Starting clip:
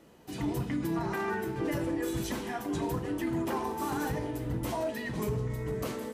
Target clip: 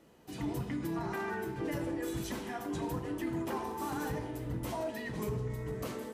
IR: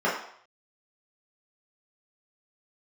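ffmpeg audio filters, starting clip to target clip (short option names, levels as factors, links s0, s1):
-filter_complex "[0:a]asplit=2[s0][s1];[1:a]atrim=start_sample=2205,adelay=62[s2];[s1][s2]afir=irnorm=-1:irlink=0,volume=0.0447[s3];[s0][s3]amix=inputs=2:normalize=0,volume=0.631"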